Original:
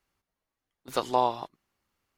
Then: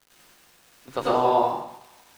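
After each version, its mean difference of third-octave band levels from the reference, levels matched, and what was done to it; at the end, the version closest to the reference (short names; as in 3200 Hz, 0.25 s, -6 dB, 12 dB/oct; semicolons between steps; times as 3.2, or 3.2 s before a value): 6.5 dB: LPF 1900 Hz 6 dB/oct; crackle 250/s -44 dBFS; on a send: thinning echo 0.186 s, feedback 74%, high-pass 990 Hz, level -21.5 dB; on the sum: plate-style reverb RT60 0.67 s, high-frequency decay 0.75×, pre-delay 80 ms, DRR -7.5 dB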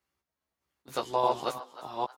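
3.5 dB: reverse delay 0.41 s, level -0.5 dB; HPF 52 Hz; doubler 14 ms -3.5 dB; on a send: frequency-shifting echo 0.311 s, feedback 39%, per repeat +130 Hz, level -15.5 dB; on the sum: gain -5 dB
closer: second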